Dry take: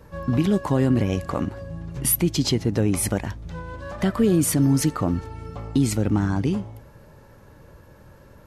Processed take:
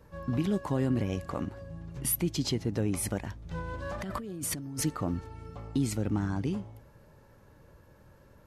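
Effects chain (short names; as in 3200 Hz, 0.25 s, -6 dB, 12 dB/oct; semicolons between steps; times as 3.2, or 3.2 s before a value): 3.51–4.85 negative-ratio compressor -27 dBFS, ratio -1; gain -8.5 dB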